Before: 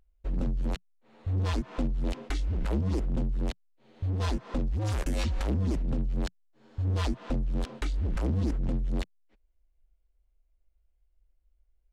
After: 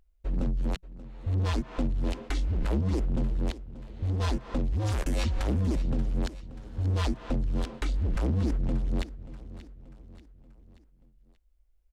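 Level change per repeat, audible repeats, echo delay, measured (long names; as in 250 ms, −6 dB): −6.0 dB, 4, 583 ms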